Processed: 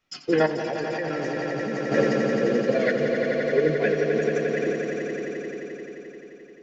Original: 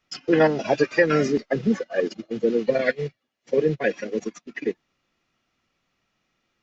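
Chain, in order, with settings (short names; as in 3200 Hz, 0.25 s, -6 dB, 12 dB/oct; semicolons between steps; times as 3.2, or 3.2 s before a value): flange 1.1 Hz, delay 8.7 ms, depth 9.9 ms, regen +74%; swelling echo 87 ms, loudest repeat 5, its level -7 dB; 0.46–1.92 level quantiser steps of 15 dB; gain +2 dB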